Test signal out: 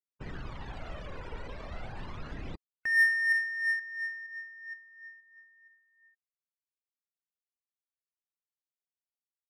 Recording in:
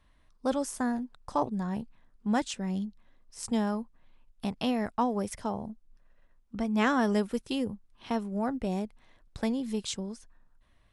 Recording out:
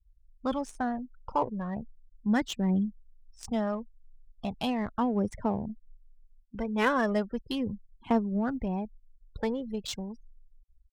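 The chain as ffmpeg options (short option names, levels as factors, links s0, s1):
-af "afftfilt=real='re*gte(hypot(re,im),0.00708)':imag='im*gte(hypot(re,im),0.00708)':win_size=1024:overlap=0.75,aphaser=in_gain=1:out_gain=1:delay=2.2:decay=0.5:speed=0.37:type=triangular,adynamicsmooth=sensitivity=7.5:basefreq=2800"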